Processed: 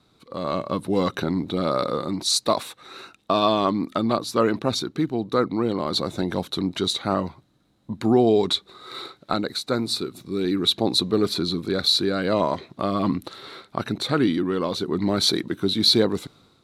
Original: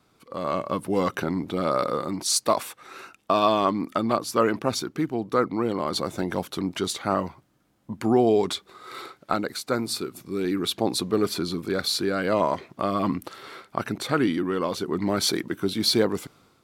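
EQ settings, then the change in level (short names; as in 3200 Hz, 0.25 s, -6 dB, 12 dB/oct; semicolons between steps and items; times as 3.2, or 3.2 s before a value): LPF 12000 Hz 12 dB/oct; low shelf 480 Hz +5.5 dB; bell 3900 Hz +14.5 dB 0.23 oct; -1.5 dB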